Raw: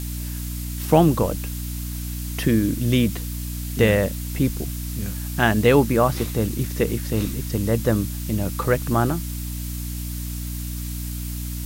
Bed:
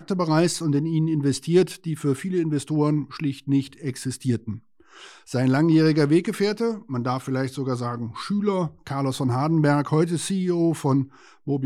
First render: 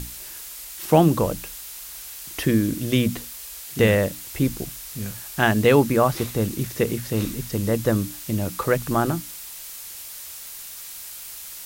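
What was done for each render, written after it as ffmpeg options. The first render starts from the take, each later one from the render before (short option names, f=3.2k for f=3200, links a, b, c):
-af "bandreject=f=60:t=h:w=6,bandreject=f=120:t=h:w=6,bandreject=f=180:t=h:w=6,bandreject=f=240:t=h:w=6,bandreject=f=300:t=h:w=6"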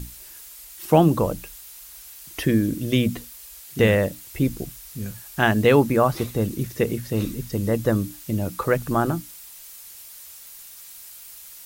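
-af "afftdn=nr=7:nf=-38"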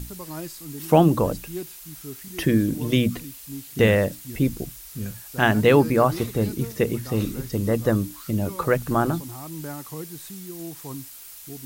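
-filter_complex "[1:a]volume=-15.5dB[a];[0:a][a]amix=inputs=2:normalize=0"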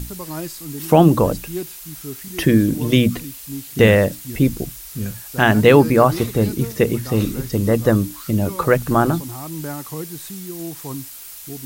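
-af "volume=5.5dB,alimiter=limit=-1dB:level=0:latency=1"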